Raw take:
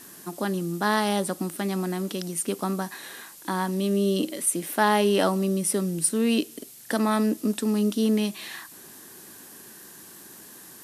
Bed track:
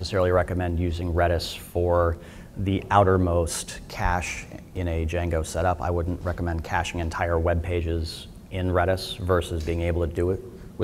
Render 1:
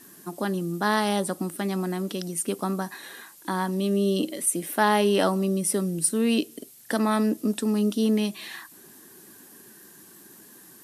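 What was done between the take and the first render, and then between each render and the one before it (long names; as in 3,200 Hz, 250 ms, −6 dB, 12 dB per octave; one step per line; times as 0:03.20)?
broadband denoise 6 dB, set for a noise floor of −47 dBFS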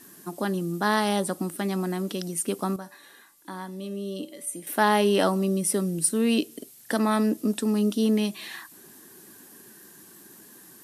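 0:02.76–0:04.67: tuned comb filter 290 Hz, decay 0.52 s, mix 70%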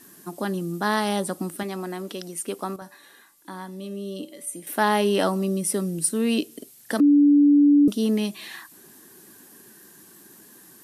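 0:01.63–0:02.82: bass and treble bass −9 dB, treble −3 dB
0:07.00–0:07.88: beep over 289 Hz −12 dBFS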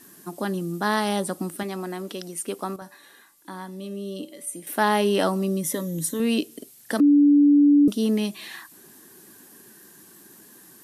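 0:05.63–0:06.20: EQ curve with evenly spaced ripples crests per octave 1.1, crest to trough 12 dB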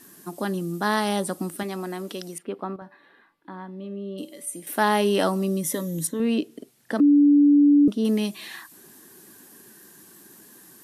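0:02.38–0:04.18: high-frequency loss of the air 420 metres
0:06.07–0:08.05: low-pass filter 1,900 Hz 6 dB per octave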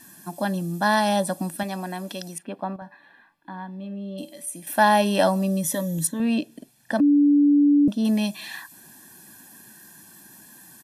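dynamic equaliser 580 Hz, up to +7 dB, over −45 dBFS, Q 4.4
comb filter 1.2 ms, depth 70%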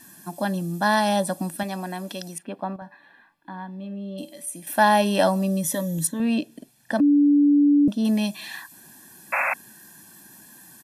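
0:09.32–0:09.54: sound drawn into the spectrogram noise 530–2,700 Hz −23 dBFS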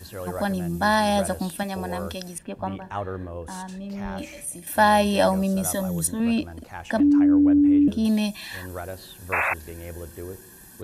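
mix in bed track −12.5 dB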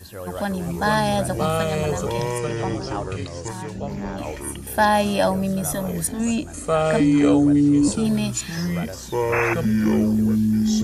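delay with pitch and tempo change per echo 304 ms, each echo −5 semitones, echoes 2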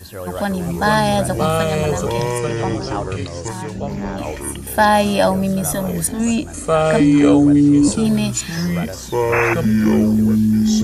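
level +4.5 dB
brickwall limiter −1 dBFS, peak gain reduction 1 dB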